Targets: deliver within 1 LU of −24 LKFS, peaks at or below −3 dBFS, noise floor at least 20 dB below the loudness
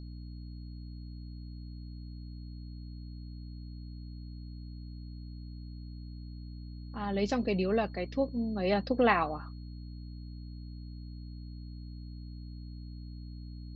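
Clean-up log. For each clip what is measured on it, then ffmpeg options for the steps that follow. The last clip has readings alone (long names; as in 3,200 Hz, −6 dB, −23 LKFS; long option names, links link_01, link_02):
mains hum 60 Hz; hum harmonics up to 300 Hz; level of the hum −41 dBFS; interfering tone 4,300 Hz; level of the tone −61 dBFS; integrated loudness −37.0 LKFS; sample peak −12.5 dBFS; target loudness −24.0 LKFS
→ -af "bandreject=frequency=60:width_type=h:width=6,bandreject=frequency=120:width_type=h:width=6,bandreject=frequency=180:width_type=h:width=6,bandreject=frequency=240:width_type=h:width=6,bandreject=frequency=300:width_type=h:width=6"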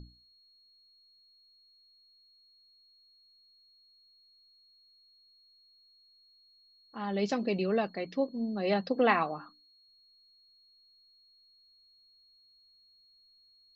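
mains hum none found; interfering tone 4,300 Hz; level of the tone −61 dBFS
→ -af "bandreject=frequency=4300:width=30"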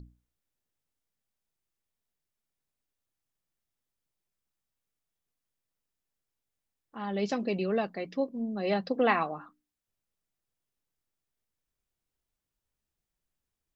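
interfering tone none found; integrated loudness −30.5 LKFS; sample peak −11.5 dBFS; target loudness −24.0 LKFS
→ -af "volume=6.5dB"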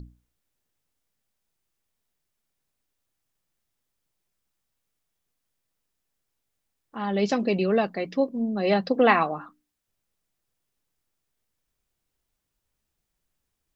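integrated loudness −24.0 LKFS; sample peak −5.0 dBFS; background noise floor −81 dBFS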